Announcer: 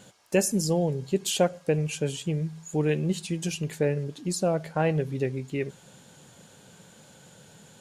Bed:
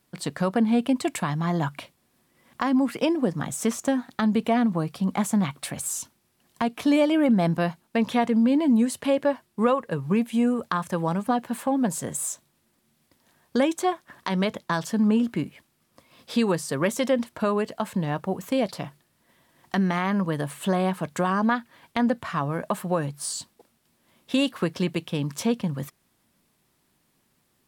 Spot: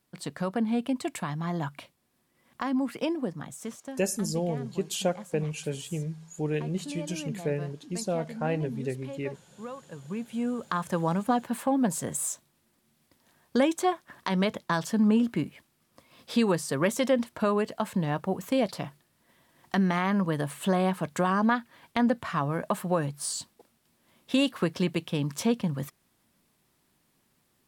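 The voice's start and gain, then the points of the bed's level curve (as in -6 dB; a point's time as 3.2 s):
3.65 s, -4.5 dB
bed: 3.13 s -6 dB
4.09 s -18.5 dB
9.71 s -18.5 dB
10.88 s -1.5 dB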